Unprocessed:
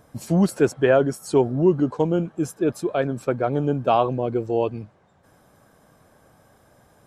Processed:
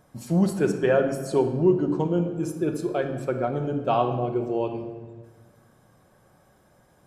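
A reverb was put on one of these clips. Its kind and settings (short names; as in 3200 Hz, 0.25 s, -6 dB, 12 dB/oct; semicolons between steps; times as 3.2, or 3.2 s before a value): shoebox room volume 1200 m³, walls mixed, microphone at 1 m; gain -5 dB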